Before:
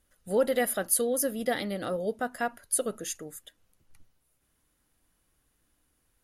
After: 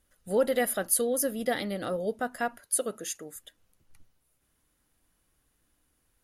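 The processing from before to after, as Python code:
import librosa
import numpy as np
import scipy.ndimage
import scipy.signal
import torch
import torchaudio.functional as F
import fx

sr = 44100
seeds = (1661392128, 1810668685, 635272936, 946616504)

y = fx.highpass(x, sr, hz=210.0, slope=6, at=(2.6, 3.36))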